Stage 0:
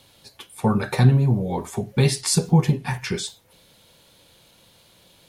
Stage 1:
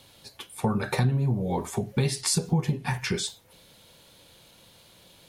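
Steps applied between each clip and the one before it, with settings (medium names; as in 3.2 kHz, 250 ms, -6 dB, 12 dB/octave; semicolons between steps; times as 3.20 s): compression 3:1, threshold -23 dBFS, peak gain reduction 10 dB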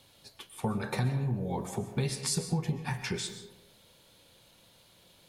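algorithmic reverb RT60 0.86 s, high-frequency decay 0.5×, pre-delay 90 ms, DRR 9 dB; trim -6 dB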